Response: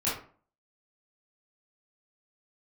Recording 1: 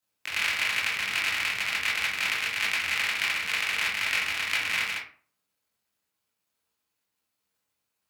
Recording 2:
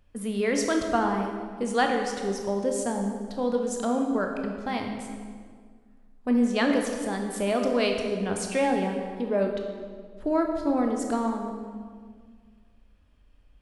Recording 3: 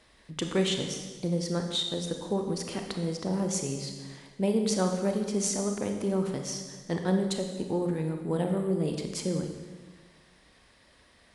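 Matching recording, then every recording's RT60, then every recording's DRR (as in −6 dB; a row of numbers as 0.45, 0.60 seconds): 1; 0.45, 1.8, 1.4 seconds; −9.5, 2.5, 4.0 decibels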